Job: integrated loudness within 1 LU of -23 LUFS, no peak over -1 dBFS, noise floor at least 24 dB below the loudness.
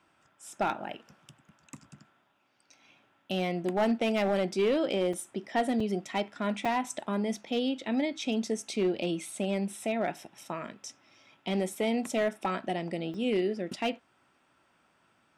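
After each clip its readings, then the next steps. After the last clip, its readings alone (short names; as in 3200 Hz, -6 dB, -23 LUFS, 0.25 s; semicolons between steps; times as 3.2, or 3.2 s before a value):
clipped 0.6%; flat tops at -21.0 dBFS; dropouts 4; longest dropout 4.2 ms; loudness -31.0 LUFS; peak -21.0 dBFS; loudness target -23.0 LUFS
-> clip repair -21 dBFS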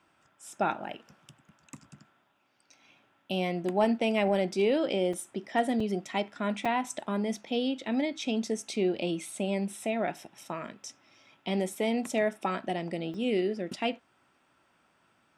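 clipped 0.0%; dropouts 4; longest dropout 4.2 ms
-> interpolate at 5.13/5.8/6.65/13.14, 4.2 ms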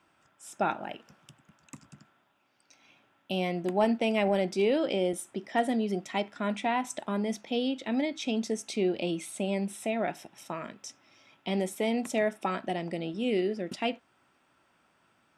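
dropouts 0; loudness -30.5 LUFS; peak -12.5 dBFS; loudness target -23.0 LUFS
-> gain +7.5 dB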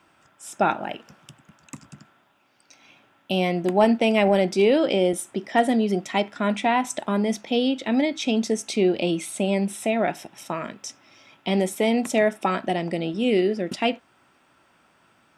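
loudness -23.0 LUFS; peak -5.5 dBFS; noise floor -61 dBFS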